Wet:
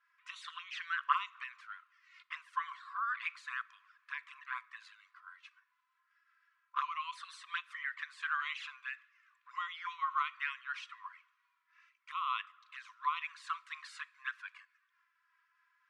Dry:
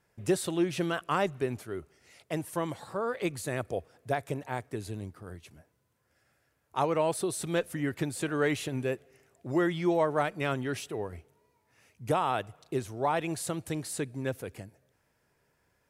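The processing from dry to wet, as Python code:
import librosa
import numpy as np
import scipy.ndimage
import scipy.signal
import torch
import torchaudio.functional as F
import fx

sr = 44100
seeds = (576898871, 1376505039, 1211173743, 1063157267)

y = fx.peak_eq(x, sr, hz=1600.0, db=fx.line((9.84, 13.5), (10.35, 4.0)), octaves=0.77, at=(9.84, 10.35), fade=0.02)
y = fx.env_flanger(y, sr, rest_ms=3.1, full_db=-24.0)
y = fx.brickwall_highpass(y, sr, low_hz=990.0)
y = fx.spacing_loss(y, sr, db_at_10k=39)
y = fx.rev_double_slope(y, sr, seeds[0], early_s=0.46, late_s=2.5, knee_db=-19, drr_db=17.0)
y = fx.am_noise(y, sr, seeds[1], hz=5.7, depth_pct=60)
y = y * librosa.db_to_amplitude(14.0)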